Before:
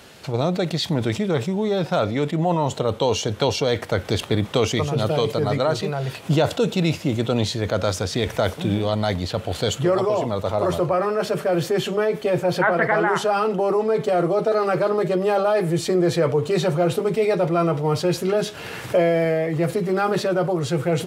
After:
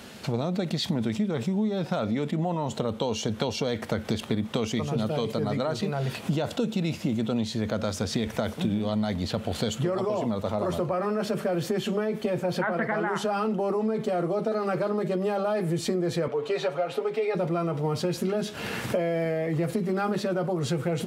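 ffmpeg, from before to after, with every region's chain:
ffmpeg -i in.wav -filter_complex "[0:a]asettb=1/sr,asplit=3[link_01][link_02][link_03];[link_01]atrim=end=16.284[link_04];[link_02]atrim=start=16.28:end=17.35,asetpts=PTS-STARTPTS,afade=type=in:duration=0.004:curve=qsin,afade=type=out:start_time=1.066:duration=0.004:curve=qsin,acrossover=split=380 4400:gain=0.1 1 0.224[link_05][link_06][link_07];[link_05][link_06][link_07]amix=inputs=3:normalize=0,aecho=1:1:7.2:0.59,atrim=end_sample=47187[link_08];[link_03]atrim=start=17.346[link_09];[link_04][link_08]acrossfade=duration=0.004:curve1=hsin:curve2=qsin[link_10];[link_10][link_09]acrossfade=duration=0.004:curve1=qsin:curve2=hsin,equalizer=frequency=220:width=4.3:gain=12,acompressor=threshold=-24dB:ratio=6" out.wav

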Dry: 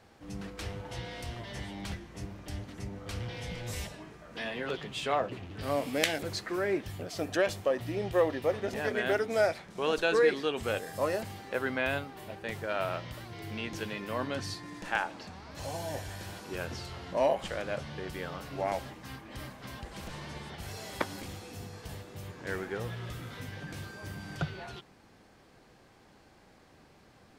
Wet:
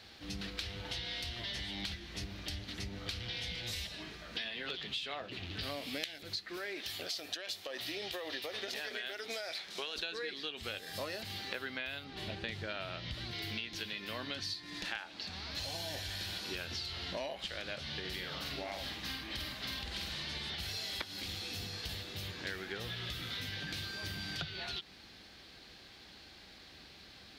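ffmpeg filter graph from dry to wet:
ffmpeg -i in.wav -filter_complex "[0:a]asettb=1/sr,asplit=3[link_01][link_02][link_03];[link_01]atrim=end=6.574[link_04];[link_02]atrim=start=6.57:end=9.96,asetpts=PTS-STARTPTS,afade=type=in:duration=0.004:curve=qsin,afade=type=out:start_time=3.386:duration=0.004:curve=qsin,bass=frequency=250:gain=-15,treble=frequency=4000:gain=4,acompressor=threshold=-31dB:ratio=6:attack=3.2:release=140:knee=1:detection=peak[link_05];[link_03]atrim=start=9.956[link_06];[link_04][link_05]acrossfade=duration=0.004:curve1=hsin:curve2=qsin[link_07];[link_07][link_06]acrossfade=duration=0.004:curve1=qsin:curve2=hsin,asettb=1/sr,asplit=3[link_08][link_09][link_10];[link_08]atrim=end=12.044[link_11];[link_09]atrim=start=12.04:end=13.31,asetpts=PTS-STARTPTS,afade=type=in:duration=0.004:curve=qsin,afade=type=out:start_time=1.266:duration=0.004:curve=qsin,lowpass=8100,lowshelf=frequency=350:gain=8.5[link_12];[link_10]atrim=start=13.306[link_13];[link_11][link_12]acrossfade=duration=0.004:curve1=hsin:curve2=qsin[link_14];[link_14][link_13]acrossfade=duration=0.004:curve1=qsin:curve2=hsin,asettb=1/sr,asplit=3[link_15][link_16][link_17];[link_15]atrim=end=18.004[link_18];[link_16]atrim=start=18:end=20.23,asetpts=PTS-STARTPTS,afade=type=in:duration=0.004:curve=qsin,afade=type=out:start_time=2.226:duration=0.004:curve=qsin,acompressor=threshold=-38dB:ratio=2:attack=3.2:release=140:knee=1:detection=peak,asplit=2[link_19][link_20];[link_20]adelay=49,volume=-3dB[link_21];[link_19][link_21]amix=inputs=2:normalize=0,atrim=end_sample=98343[link_22];[link_17]atrim=start=20.226[link_23];[link_18][link_22]acrossfade=duration=0.004:curve1=hsin:curve2=qsin[link_24];[link_24][link_23]acrossfade=duration=0.004:curve1=qsin:curve2=hsin,equalizer=frequency=125:width_type=o:width=1:gain=-9,equalizer=frequency=250:width_type=o:width=1:gain=-4,equalizer=frequency=500:width_type=o:width=1:gain=-7,equalizer=frequency=1000:width_type=o:width=1:gain=-8,equalizer=frequency=4000:width_type=o:width=1:gain=12,equalizer=frequency=8000:width_type=o:width=1:gain=-7,acompressor=threshold=-43dB:ratio=12,highpass=44,volume=6.5dB" out.wav

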